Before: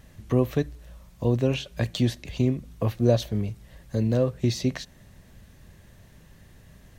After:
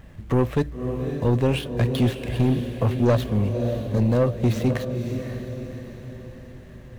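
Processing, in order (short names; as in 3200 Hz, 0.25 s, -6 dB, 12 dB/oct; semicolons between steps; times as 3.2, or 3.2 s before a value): median filter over 9 samples; diffused feedback echo 0.553 s, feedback 47%, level -9 dB; soft clip -19 dBFS, distortion -11 dB; gain +6 dB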